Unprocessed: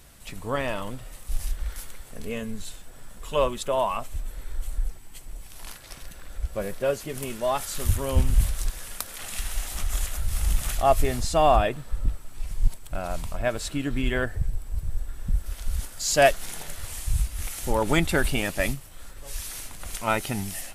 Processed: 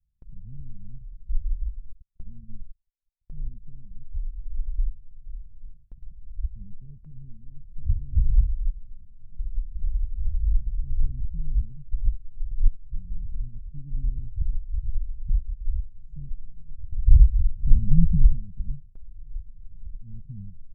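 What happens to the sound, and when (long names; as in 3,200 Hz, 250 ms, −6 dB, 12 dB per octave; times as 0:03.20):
0:01.92–0:03.29: noise gate −33 dBFS, range −38 dB
0:16.92–0:18.32: low shelf with overshoot 280 Hz +10.5 dB, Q 1.5
whole clip: inverse Chebyshev low-pass filter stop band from 600 Hz, stop band 70 dB; comb filter 4.8 ms, depth 41%; noise gate with hold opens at −38 dBFS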